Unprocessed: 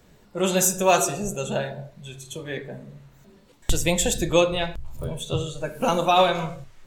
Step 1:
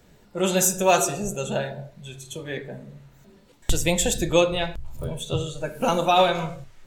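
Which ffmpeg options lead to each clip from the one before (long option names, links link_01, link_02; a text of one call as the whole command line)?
ffmpeg -i in.wav -af "bandreject=frequency=1100:width=17" out.wav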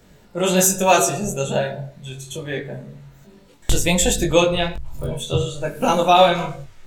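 ffmpeg -i in.wav -af "flanger=delay=20:depth=3.1:speed=1.2,volume=7.5dB" out.wav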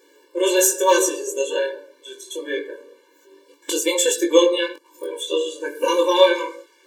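ffmpeg -i in.wav -af "afftfilt=real='re*eq(mod(floor(b*sr/1024/300),2),1)':imag='im*eq(mod(floor(b*sr/1024/300),2),1)':win_size=1024:overlap=0.75,volume=2.5dB" out.wav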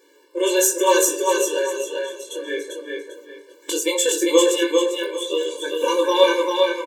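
ffmpeg -i in.wav -af "aecho=1:1:396|792|1188|1584:0.668|0.187|0.0524|0.0147,volume=-1dB" out.wav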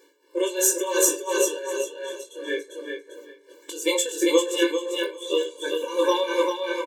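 ffmpeg -i in.wav -af "tremolo=f=2.8:d=0.8" out.wav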